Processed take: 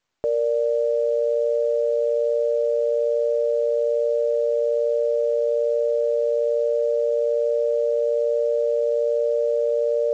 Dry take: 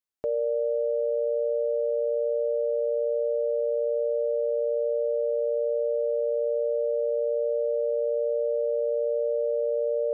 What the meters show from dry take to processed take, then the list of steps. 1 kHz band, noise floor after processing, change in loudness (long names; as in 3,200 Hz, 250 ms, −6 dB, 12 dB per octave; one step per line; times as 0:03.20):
can't be measured, −22 dBFS, +5.0 dB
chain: high-frequency loss of the air 210 metres
level +5.5 dB
mu-law 128 kbit/s 16,000 Hz